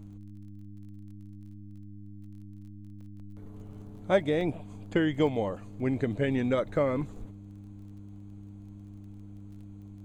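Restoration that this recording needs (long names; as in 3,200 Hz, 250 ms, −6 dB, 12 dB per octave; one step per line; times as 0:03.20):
click removal
hum removal 100.8 Hz, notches 3
repair the gap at 0:03.01/0:04.41/0:05.27, 2.3 ms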